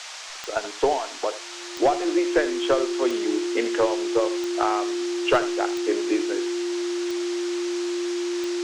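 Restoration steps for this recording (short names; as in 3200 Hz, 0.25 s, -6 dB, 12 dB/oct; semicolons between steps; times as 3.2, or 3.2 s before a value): de-click; notch 350 Hz, Q 30; noise print and reduce 30 dB; inverse comb 80 ms -14 dB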